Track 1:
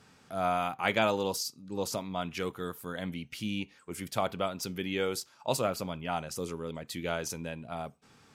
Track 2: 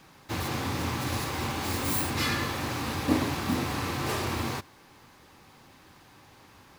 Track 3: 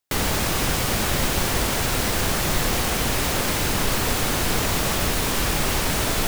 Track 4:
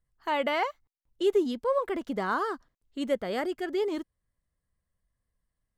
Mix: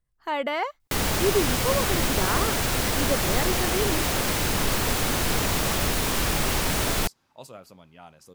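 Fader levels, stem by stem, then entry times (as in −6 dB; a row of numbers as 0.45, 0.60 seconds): −14.0, −17.5, −2.0, +0.5 decibels; 1.90, 1.55, 0.80, 0.00 seconds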